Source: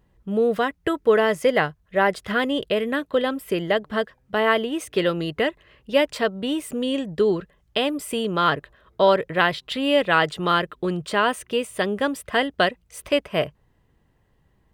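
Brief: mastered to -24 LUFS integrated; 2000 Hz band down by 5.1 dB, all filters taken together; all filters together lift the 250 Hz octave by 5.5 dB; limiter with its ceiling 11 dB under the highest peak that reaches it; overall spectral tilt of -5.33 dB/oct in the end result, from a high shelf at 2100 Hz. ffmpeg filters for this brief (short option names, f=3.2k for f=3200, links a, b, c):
-af "equalizer=f=250:t=o:g=7,equalizer=f=2k:t=o:g=-4.5,highshelf=f=2.1k:g=-4.5,volume=2dB,alimiter=limit=-14dB:level=0:latency=1"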